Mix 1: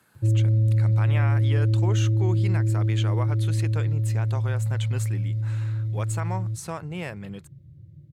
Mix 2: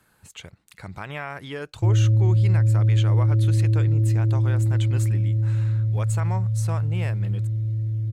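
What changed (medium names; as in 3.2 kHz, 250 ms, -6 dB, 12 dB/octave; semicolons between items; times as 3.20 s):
background: entry +1.60 s; master: remove high-pass 100 Hz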